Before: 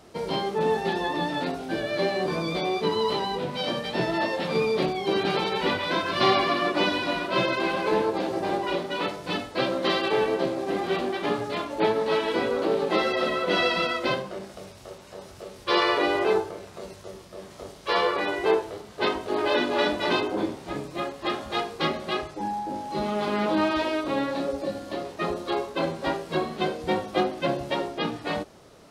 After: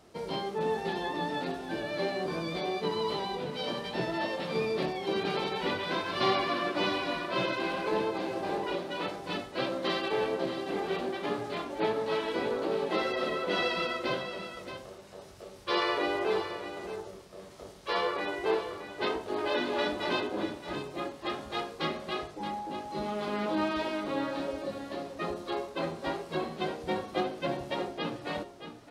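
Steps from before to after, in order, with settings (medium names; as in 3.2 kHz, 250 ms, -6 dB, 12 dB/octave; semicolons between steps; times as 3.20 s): delay 625 ms -10 dB; trim -6.5 dB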